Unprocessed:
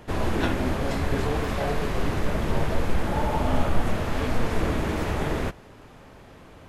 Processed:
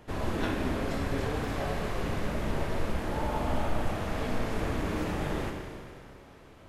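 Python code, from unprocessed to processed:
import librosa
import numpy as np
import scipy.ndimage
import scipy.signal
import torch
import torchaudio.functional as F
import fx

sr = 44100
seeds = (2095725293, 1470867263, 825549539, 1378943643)

y = fx.rev_schroeder(x, sr, rt60_s=2.3, comb_ms=29, drr_db=2.5)
y = y * 10.0 ** (-7.0 / 20.0)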